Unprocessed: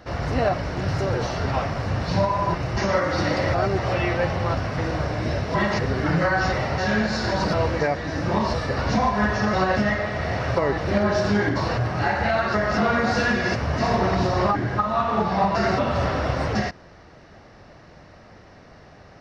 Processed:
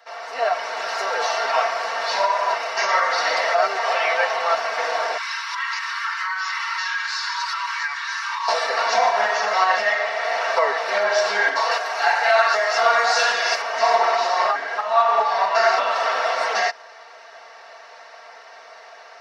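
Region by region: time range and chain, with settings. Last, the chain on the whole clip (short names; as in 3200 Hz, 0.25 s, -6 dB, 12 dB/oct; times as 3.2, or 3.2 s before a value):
5.17–8.48 Chebyshev high-pass 970 Hz, order 6 + compressor 4:1, threshold -31 dBFS
11.71–13.62 HPF 220 Hz + high shelf 5100 Hz +10 dB
whole clip: HPF 630 Hz 24 dB/oct; comb 4.4 ms, depth 83%; AGC gain up to 10.5 dB; gain -3.5 dB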